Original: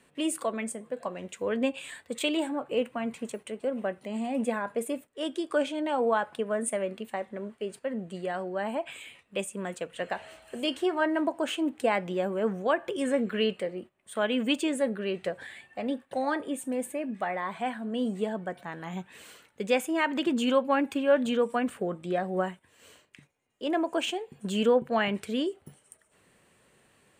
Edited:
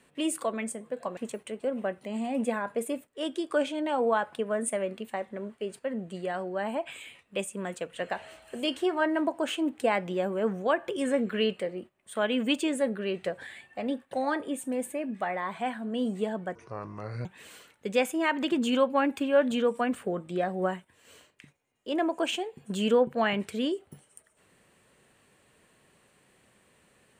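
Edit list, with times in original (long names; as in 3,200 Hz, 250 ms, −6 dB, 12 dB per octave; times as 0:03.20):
0:01.17–0:03.17: remove
0:18.55–0:19.00: play speed 64%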